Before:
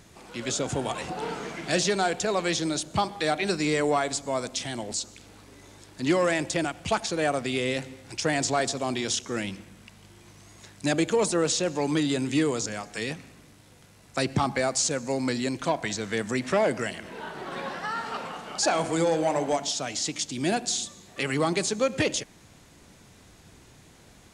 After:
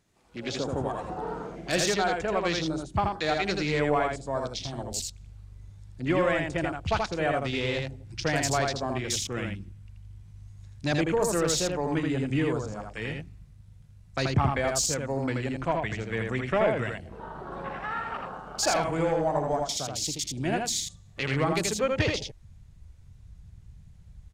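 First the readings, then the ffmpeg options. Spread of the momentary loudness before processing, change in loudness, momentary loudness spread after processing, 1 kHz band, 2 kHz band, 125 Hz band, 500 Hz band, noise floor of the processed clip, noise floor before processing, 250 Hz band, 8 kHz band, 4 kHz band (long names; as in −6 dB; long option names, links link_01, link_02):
10 LU, −1.0 dB, 12 LU, −0.5 dB, −0.5 dB, +3.5 dB, −1.0 dB, −52 dBFS, −54 dBFS, −2.5 dB, −2.5 dB, −2.0 dB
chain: -af "aeval=exprs='0.266*(cos(1*acos(clip(val(0)/0.266,-1,1)))-cos(1*PI/2))+0.0168*(cos(3*acos(clip(val(0)/0.266,-1,1)))-cos(3*PI/2))':channel_layout=same,asubboost=boost=5:cutoff=98,afwtdn=0.0141,aecho=1:1:81:0.668"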